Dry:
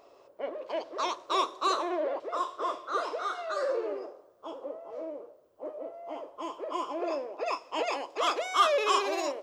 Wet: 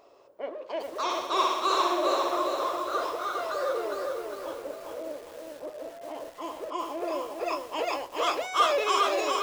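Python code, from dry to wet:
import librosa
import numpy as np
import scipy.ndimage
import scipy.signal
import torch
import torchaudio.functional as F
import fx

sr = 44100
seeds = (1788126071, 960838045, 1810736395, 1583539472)

y = fx.room_flutter(x, sr, wall_m=10.2, rt60_s=1.1, at=(0.97, 2.4))
y = fx.echo_crushed(y, sr, ms=406, feedback_pct=55, bits=8, wet_db=-3.0)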